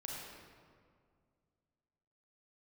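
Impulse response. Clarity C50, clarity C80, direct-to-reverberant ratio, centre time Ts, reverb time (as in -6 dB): -2.0 dB, 0.0 dB, -3.5 dB, 0.116 s, 2.1 s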